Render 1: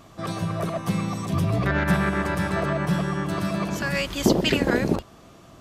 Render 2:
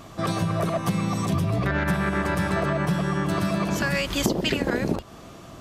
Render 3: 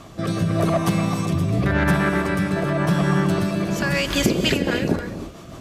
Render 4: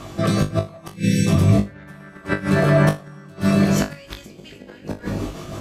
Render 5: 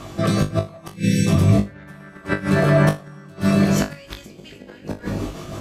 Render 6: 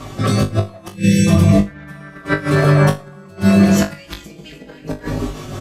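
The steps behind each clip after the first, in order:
compression 6:1, threshold -26 dBFS, peak gain reduction 12 dB; trim +5.5 dB
rotary cabinet horn 0.9 Hz, later 6.3 Hz, at 3.99 s; gated-style reverb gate 330 ms rising, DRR 8.5 dB; trim +5 dB
spectral selection erased 0.89–1.27 s, 550–1500 Hz; inverted gate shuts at -11 dBFS, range -28 dB; on a send: flutter echo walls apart 3.4 m, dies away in 0.23 s; on the sum: trim +4.5 dB
no audible change
endless flanger 4.8 ms -0.38 Hz; trim +7 dB

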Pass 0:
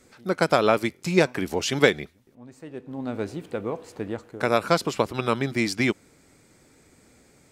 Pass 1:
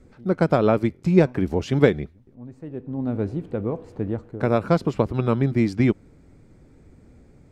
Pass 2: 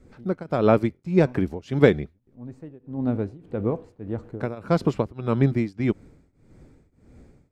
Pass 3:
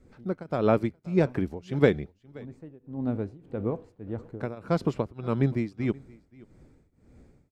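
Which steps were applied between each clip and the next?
tilt EQ -4 dB/octave; trim -2.5 dB
tremolo triangle 1.7 Hz, depth 95%; trim +2.5 dB
delay 527 ms -23.5 dB; trim -4.5 dB

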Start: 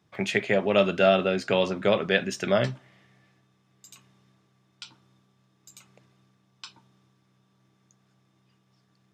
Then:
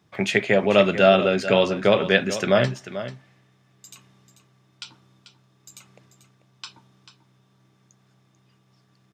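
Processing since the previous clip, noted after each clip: delay 440 ms -12.5 dB; trim +4.5 dB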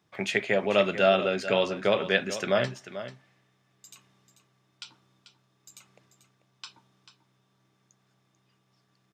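bass shelf 250 Hz -6.5 dB; trim -5 dB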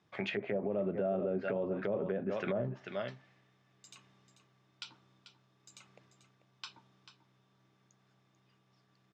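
low-pass that closes with the level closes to 530 Hz, closed at -22.5 dBFS; Bessel low-pass 5 kHz, order 2; peak limiter -24 dBFS, peak gain reduction 9.5 dB; trim -1 dB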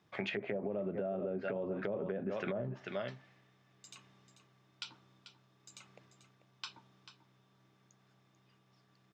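compression, threshold -35 dBFS, peak gain reduction 6.5 dB; trim +1.5 dB

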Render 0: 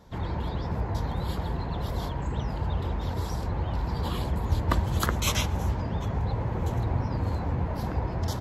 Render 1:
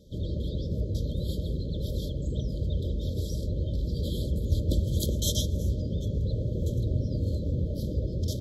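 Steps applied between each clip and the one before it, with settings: FFT band-reject 630–3100 Hz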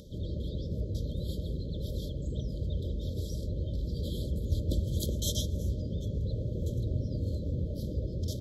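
upward compressor, threshold -38 dBFS; trim -4 dB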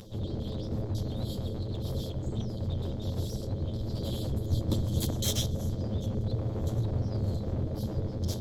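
comb filter that takes the minimum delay 9.3 ms; trim +3.5 dB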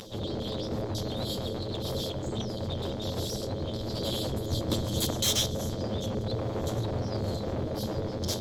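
overdrive pedal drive 16 dB, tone 7.7 kHz, clips at -16 dBFS

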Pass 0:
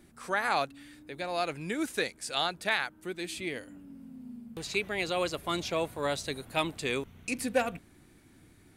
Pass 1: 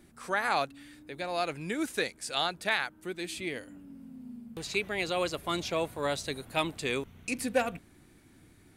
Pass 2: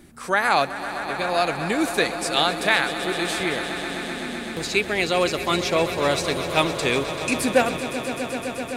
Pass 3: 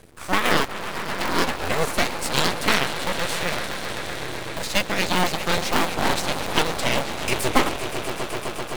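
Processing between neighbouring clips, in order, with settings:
no audible change
echo with a slow build-up 128 ms, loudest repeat 5, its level -14 dB; trim +9 dB
cycle switcher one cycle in 2, inverted; half-wave rectifier; trim +3.5 dB

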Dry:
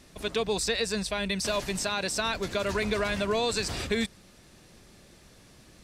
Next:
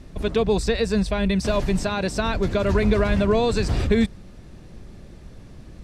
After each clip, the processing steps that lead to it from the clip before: tilt EQ -3 dB/octave; trim +4.5 dB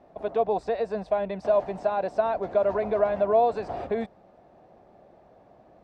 band-pass filter 710 Hz, Q 4; trim +7 dB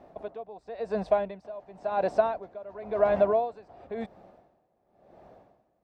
logarithmic tremolo 0.95 Hz, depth 22 dB; trim +3 dB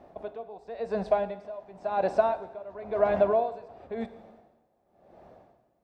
plate-style reverb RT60 0.95 s, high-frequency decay 1×, DRR 11 dB

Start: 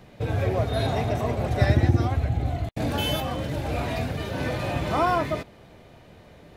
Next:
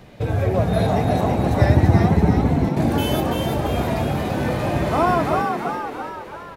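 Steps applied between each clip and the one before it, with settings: dynamic bell 3.4 kHz, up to -6 dB, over -45 dBFS, Q 0.74; on a send: frequency-shifting echo 336 ms, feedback 53%, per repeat +79 Hz, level -4 dB; on the sum: trim +4.5 dB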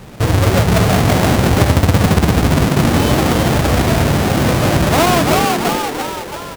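square wave that keeps the level; compression 5:1, threshold -14 dBFS, peak gain reduction 8 dB; trim +4.5 dB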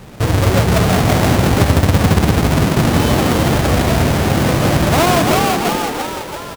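delay 163 ms -9 dB; trim -1 dB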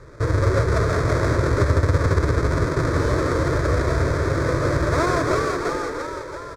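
distance through air 100 m; static phaser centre 780 Hz, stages 6; trim -2.5 dB

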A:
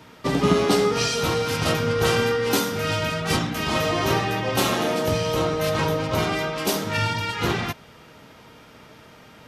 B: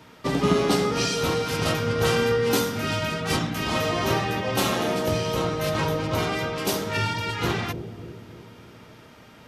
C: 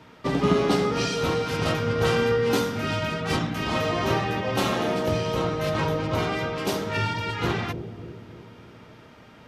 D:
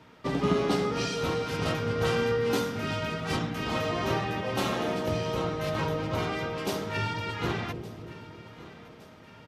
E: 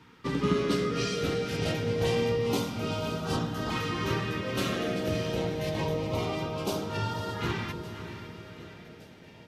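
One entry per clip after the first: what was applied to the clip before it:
bucket-brigade echo 296 ms, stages 1024, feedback 54%, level -8 dB; trim -2 dB
treble shelf 6.2 kHz -11 dB
feedback delay 1165 ms, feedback 52%, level -18.5 dB; trim -4.5 dB
LFO notch saw up 0.27 Hz 600–2500 Hz; echo that smears into a reverb 538 ms, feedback 41%, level -11 dB

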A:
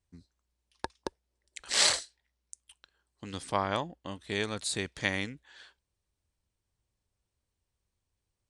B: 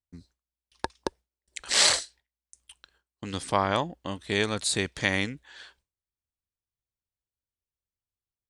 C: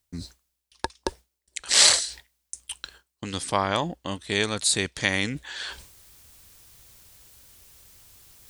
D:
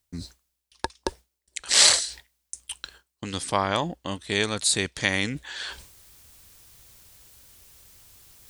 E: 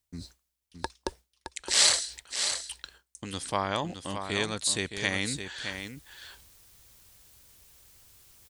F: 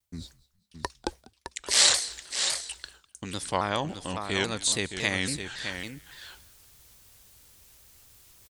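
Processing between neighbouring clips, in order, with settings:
gate with hold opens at -57 dBFS; in parallel at 0 dB: peak limiter -17.5 dBFS, peak gain reduction 8.5 dB
treble shelf 3.4 kHz +7 dB; reverse; upward compressor, threshold -24 dBFS; reverse
no audible change
delay 617 ms -8 dB; trim -5 dB
frequency-shifting echo 198 ms, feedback 34%, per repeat -130 Hz, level -22 dB; vibrato with a chosen wave saw down 3.6 Hz, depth 160 cents; trim +1.5 dB

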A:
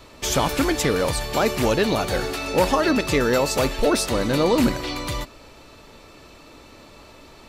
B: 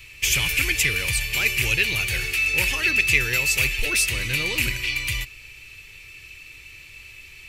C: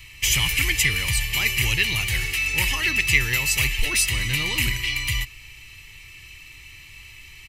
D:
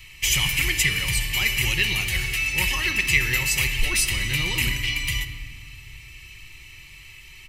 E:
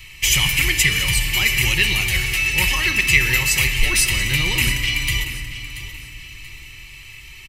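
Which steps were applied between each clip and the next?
FFT filter 120 Hz 0 dB, 240 Hz -21 dB, 380 Hz -12 dB, 640 Hz -22 dB, 1.3 kHz -12 dB, 2.5 kHz +15 dB, 3.7 kHz -1 dB, 6.9 kHz +3 dB, 12 kHz +7 dB
comb 1 ms, depth 55%
simulated room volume 3700 m³, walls mixed, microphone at 1 m; trim -1.5 dB
feedback delay 681 ms, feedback 33%, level -13 dB; trim +4.5 dB

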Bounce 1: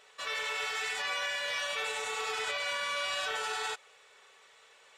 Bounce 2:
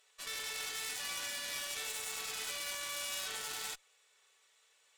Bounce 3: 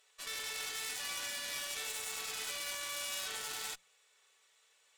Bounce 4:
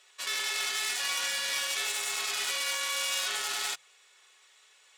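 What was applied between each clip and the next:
Chebyshev shaper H 6 -10 dB, 7 -28 dB, 8 -21 dB, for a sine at -23 dBFS; pre-emphasis filter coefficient 0.8
hum notches 60/120/180 Hz
frequency weighting A; frequency shift -32 Hz; trim +8.5 dB

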